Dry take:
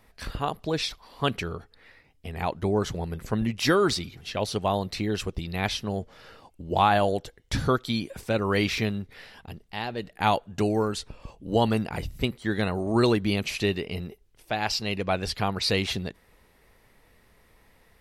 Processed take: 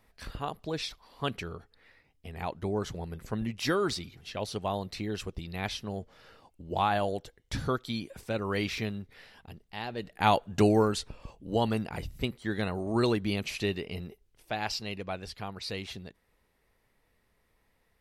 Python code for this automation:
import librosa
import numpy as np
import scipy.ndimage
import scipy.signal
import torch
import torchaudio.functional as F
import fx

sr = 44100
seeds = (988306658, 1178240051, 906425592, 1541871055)

y = fx.gain(x, sr, db=fx.line((9.68, -6.5), (10.65, 2.5), (11.49, -5.0), (14.61, -5.0), (15.31, -12.0)))